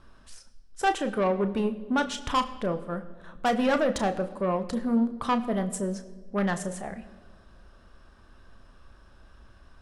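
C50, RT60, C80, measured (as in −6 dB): 14.5 dB, 1.5 s, 15.5 dB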